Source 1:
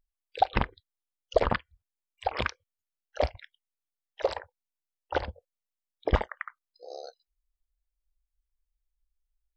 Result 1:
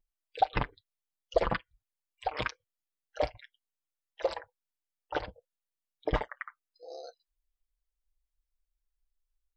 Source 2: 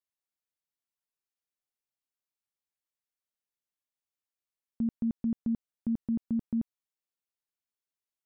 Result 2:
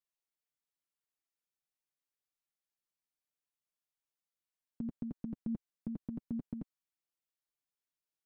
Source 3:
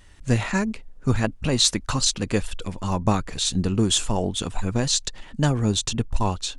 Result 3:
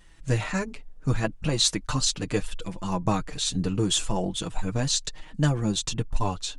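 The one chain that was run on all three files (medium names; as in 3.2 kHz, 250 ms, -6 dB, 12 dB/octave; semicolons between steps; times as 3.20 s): flange 0.71 Hz, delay 5.8 ms, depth 1.2 ms, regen -10%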